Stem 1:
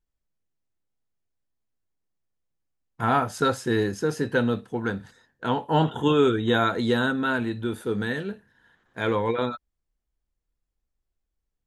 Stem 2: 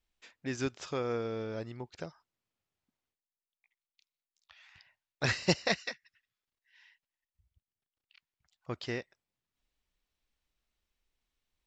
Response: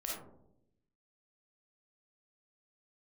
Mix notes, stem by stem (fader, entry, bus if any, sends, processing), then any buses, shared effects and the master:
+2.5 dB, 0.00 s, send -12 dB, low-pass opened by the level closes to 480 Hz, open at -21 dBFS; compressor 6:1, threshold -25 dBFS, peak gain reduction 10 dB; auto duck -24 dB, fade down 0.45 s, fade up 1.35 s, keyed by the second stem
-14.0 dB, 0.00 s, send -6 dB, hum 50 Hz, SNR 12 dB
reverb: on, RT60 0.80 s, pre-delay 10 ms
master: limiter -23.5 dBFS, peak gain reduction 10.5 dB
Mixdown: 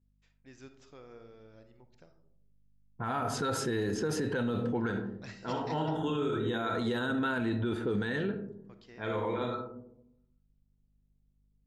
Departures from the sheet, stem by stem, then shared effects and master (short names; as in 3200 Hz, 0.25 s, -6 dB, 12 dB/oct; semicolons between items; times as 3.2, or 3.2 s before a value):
stem 1: missing compressor 6:1, threshold -25 dBFS, peak gain reduction 10 dB; stem 2 -14.0 dB -> -20.5 dB